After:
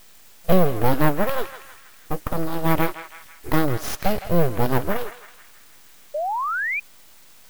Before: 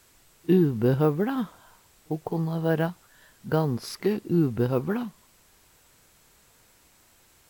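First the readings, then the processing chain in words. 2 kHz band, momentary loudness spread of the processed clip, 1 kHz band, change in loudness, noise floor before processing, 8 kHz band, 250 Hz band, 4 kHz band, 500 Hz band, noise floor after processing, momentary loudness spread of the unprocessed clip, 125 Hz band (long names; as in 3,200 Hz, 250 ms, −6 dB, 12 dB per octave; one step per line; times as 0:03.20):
+12.0 dB, 15 LU, +11.0 dB, +2.5 dB, −60 dBFS, +9.5 dB, 0.0 dB, +7.0 dB, +3.0 dB, −48 dBFS, 13 LU, +1.0 dB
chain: high-shelf EQ 7,600 Hz +11.5 dB
full-wave rectification
feedback echo with a band-pass in the loop 162 ms, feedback 59%, band-pass 2,100 Hz, level −9 dB
sound drawn into the spectrogram rise, 0:06.14–0:06.80, 570–2,500 Hz −31 dBFS
level +6.5 dB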